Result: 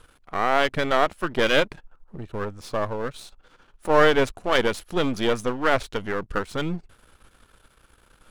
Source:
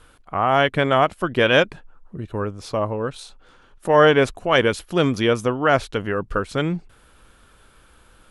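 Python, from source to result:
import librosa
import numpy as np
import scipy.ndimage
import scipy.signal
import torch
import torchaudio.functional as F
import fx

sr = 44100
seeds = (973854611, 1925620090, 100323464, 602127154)

y = np.where(x < 0.0, 10.0 ** (-12.0 / 20.0) * x, x)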